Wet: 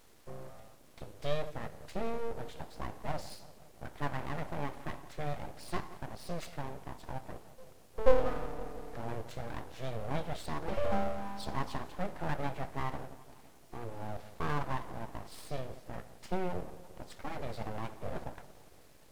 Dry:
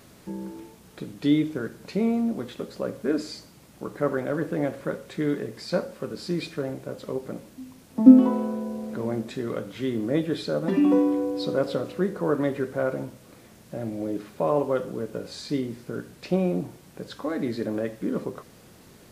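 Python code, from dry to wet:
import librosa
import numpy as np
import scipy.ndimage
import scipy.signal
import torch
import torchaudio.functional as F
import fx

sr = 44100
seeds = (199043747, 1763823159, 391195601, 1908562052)

y = fx.echo_filtered(x, sr, ms=172, feedback_pct=65, hz=1100.0, wet_db=-15)
y = np.abs(y)
y = F.gain(torch.from_numpy(y), -8.0).numpy()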